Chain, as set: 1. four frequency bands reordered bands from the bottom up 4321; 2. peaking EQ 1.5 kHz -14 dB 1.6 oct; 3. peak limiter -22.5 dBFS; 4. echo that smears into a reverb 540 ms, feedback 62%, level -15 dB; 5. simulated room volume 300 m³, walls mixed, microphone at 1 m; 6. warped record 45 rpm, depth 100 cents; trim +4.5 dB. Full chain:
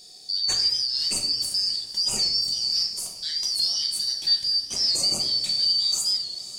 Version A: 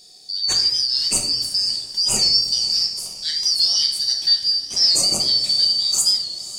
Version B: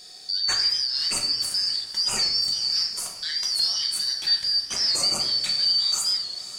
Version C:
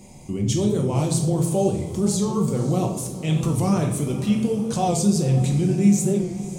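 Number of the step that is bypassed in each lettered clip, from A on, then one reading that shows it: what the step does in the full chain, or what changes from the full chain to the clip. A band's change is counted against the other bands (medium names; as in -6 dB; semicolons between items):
3, mean gain reduction 3.5 dB; 2, 2 kHz band +8.5 dB; 1, 4 kHz band -32.0 dB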